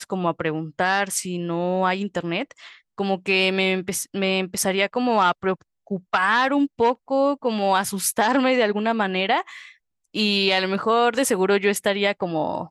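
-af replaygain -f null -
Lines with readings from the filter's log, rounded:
track_gain = +1.8 dB
track_peak = 0.319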